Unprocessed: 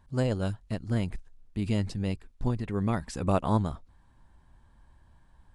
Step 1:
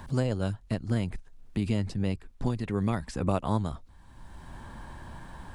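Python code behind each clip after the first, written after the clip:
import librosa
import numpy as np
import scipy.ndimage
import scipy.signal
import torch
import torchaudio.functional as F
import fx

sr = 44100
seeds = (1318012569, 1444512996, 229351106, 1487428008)

y = fx.band_squash(x, sr, depth_pct=70)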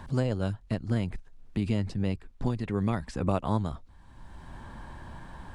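y = fx.high_shelf(x, sr, hz=8000.0, db=-8.5)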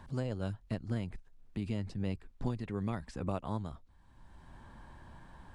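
y = fx.rider(x, sr, range_db=10, speed_s=0.5)
y = F.gain(torch.from_numpy(y), -7.0).numpy()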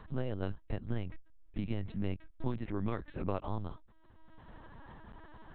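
y = fx.lpc_vocoder(x, sr, seeds[0], excitation='pitch_kept', order=8)
y = F.gain(torch.from_numpy(y), 1.0).numpy()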